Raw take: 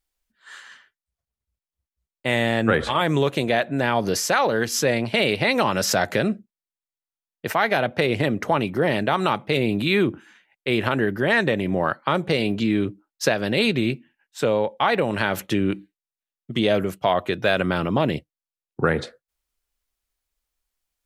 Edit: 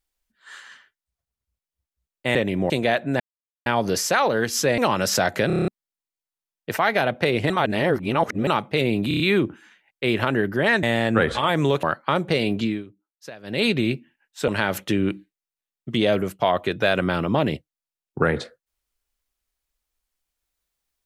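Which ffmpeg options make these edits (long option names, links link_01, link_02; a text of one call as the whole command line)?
ffmpeg -i in.wav -filter_complex "[0:a]asplit=23[link_01][link_02][link_03][link_04][link_05][link_06][link_07][link_08][link_09][link_10][link_11][link_12][link_13][link_14][link_15][link_16][link_17][link_18][link_19][link_20][link_21][link_22][link_23];[link_01]atrim=end=2.352[link_24];[link_02]atrim=start=11.468:end=11.822[link_25];[link_03]atrim=start=3.348:end=3.85,asetpts=PTS-STARTPTS,afade=type=out:start_time=0.498:duration=0.004:curve=hsin,apad=pad_dur=0.46[link_26];[link_04]atrim=start=3.85:end=4.972,asetpts=PTS-STARTPTS,afade=type=in:duration=0.004:curve=hsin[link_27];[link_05]atrim=start=5.538:end=6.262[link_28];[link_06]atrim=start=6.228:end=6.262[link_29];[link_07]atrim=start=6.228:end=6.262[link_30];[link_08]atrim=start=6.228:end=6.262[link_31];[link_09]atrim=start=6.228:end=6.262[link_32];[link_10]atrim=start=6.228:end=6.262[link_33];[link_11]atrim=start=6.228:end=6.262[link_34];[link_12]atrim=start=6.438:end=8.262[link_35];[link_13]atrim=start=8.258:end=9.232,asetpts=PTS-STARTPTS,areverse[link_36];[link_14]atrim=start=9.228:end=9.872[link_37];[link_15]atrim=start=9.838:end=9.872[link_38];[link_16]atrim=start=9.838:end=9.872[link_39];[link_17]atrim=start=9.838:end=9.872[link_40];[link_18]atrim=start=9.838:end=11.472[link_41];[link_19]atrim=start=2.348:end=3.352[link_42];[link_20]atrim=start=11.818:end=12.83,asetpts=PTS-STARTPTS,afade=type=out:start_time=0.792:duration=0.22:silence=0.11885[link_43];[link_21]atrim=start=12.83:end=13.42,asetpts=PTS-STARTPTS,volume=-18.5dB[link_44];[link_22]atrim=start=13.42:end=14.472,asetpts=PTS-STARTPTS,afade=type=in:duration=0.22:silence=0.11885[link_45];[link_23]atrim=start=15.098[link_46];[link_24][link_25]acrossfade=duration=0.004:curve1=hsin:curve2=hsin[link_47];[link_26][link_27]concat=n=2:v=0:a=1[link_48];[link_47][link_48]acrossfade=duration=0.004:curve1=hsin:curve2=hsin[link_49];[link_49][link_28]acrossfade=duration=0.004:curve1=hsin:curve2=hsin[link_50];[link_50][link_29]acrossfade=duration=0.004:curve1=hsin:curve2=hsin[link_51];[link_51][link_30]acrossfade=duration=0.004:curve1=hsin:curve2=hsin[link_52];[link_52][link_31]acrossfade=duration=0.004:curve1=hsin:curve2=hsin[link_53];[link_53][link_32]acrossfade=duration=0.004:curve1=hsin:curve2=hsin[link_54];[link_54][link_33]acrossfade=duration=0.004:curve1=hsin:curve2=hsin[link_55];[link_55][link_34]acrossfade=duration=0.004:curve1=hsin:curve2=hsin[link_56];[link_56][link_35]acrossfade=duration=0.004:curve1=hsin:curve2=hsin[link_57];[link_57][link_36]acrossfade=duration=0.004:curve1=hsin:curve2=hsin[link_58];[link_58][link_37]acrossfade=duration=0.004:curve1=hsin:curve2=hsin[link_59];[link_59][link_38]acrossfade=duration=0.004:curve1=hsin:curve2=hsin[link_60];[link_60][link_39]acrossfade=duration=0.004:curve1=hsin:curve2=hsin[link_61];[link_61][link_40]acrossfade=duration=0.004:curve1=hsin:curve2=hsin[link_62];[link_62][link_41]acrossfade=duration=0.004:curve1=hsin:curve2=hsin[link_63];[link_63][link_42]acrossfade=duration=0.004:curve1=hsin:curve2=hsin[link_64];[link_43][link_44][link_45]concat=n=3:v=0:a=1[link_65];[link_64][link_65]acrossfade=duration=0.004:curve1=hsin:curve2=hsin[link_66];[link_66][link_46]acrossfade=duration=0.004:curve1=hsin:curve2=hsin" out.wav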